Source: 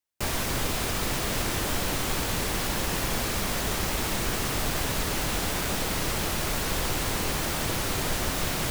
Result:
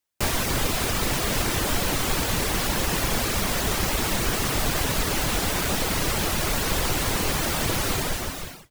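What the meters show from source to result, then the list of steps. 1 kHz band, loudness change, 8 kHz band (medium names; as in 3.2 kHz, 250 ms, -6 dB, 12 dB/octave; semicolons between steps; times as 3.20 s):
+3.5 dB, +3.5 dB, +3.5 dB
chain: fade out at the end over 0.79 s; reverb removal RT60 0.52 s; trim +5 dB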